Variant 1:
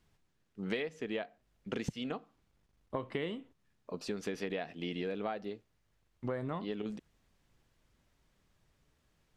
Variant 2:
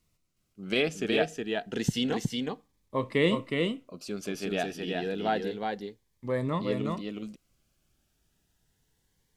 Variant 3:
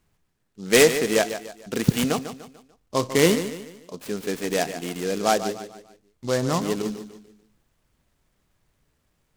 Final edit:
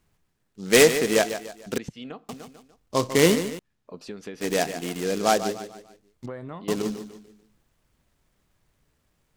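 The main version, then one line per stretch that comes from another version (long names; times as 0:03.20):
3
0:01.78–0:02.29: punch in from 1
0:03.59–0:04.41: punch in from 1
0:06.26–0:06.68: punch in from 1
not used: 2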